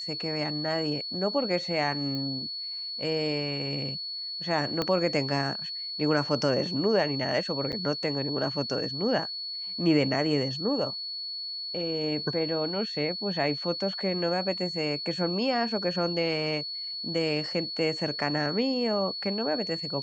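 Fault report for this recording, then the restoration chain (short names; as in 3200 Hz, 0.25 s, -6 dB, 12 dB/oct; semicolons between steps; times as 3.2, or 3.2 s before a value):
tone 4400 Hz -33 dBFS
2.15 pop -23 dBFS
4.82 pop -14 dBFS
7.72–7.73 gap 8.3 ms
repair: de-click; notch 4400 Hz, Q 30; interpolate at 7.72, 8.3 ms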